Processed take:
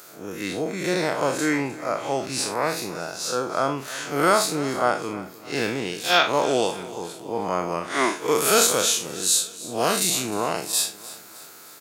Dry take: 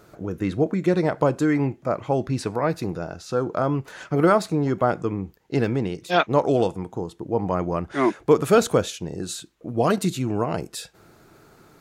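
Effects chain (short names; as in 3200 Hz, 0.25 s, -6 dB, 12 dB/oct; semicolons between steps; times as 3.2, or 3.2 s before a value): time blur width 0.108 s; HPF 110 Hz; tilt +4.5 dB/oct; feedback echo 0.307 s, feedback 48%, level -17.5 dB; gain +5.5 dB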